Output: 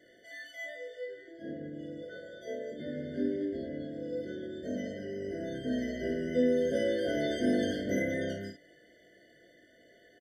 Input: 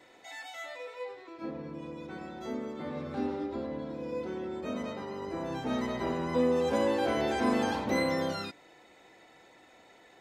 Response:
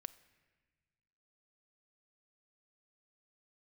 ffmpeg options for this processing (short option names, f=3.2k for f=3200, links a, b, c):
-filter_complex "[0:a]asettb=1/sr,asplit=3[a][b][c];[a]atrim=end=2.014[d];[b]atrim=start=2.01:end=2.72,asetpts=PTS-STARTPTS,afade=t=in:d=0.004:c=qsin,afade=t=out:st=0.706:d=0.004:c=qsin,lowshelf=f=390:t=q:w=3:g=-7.5[e];[c]atrim=start=2.716[f];[d][e]acrossfade=d=0.004:c1=hsin:c2=qsin[g];[g][f]acrossfade=d=0.004:c1=qsin:c2=hsin,aecho=1:1:20|51:0.668|0.473,afftfilt=real='re*eq(mod(floor(b*sr/1024/720),2),0)':imag='im*eq(mod(floor(b*sr/1024/720),2),0)':win_size=1024:overlap=0.75,volume=-3dB"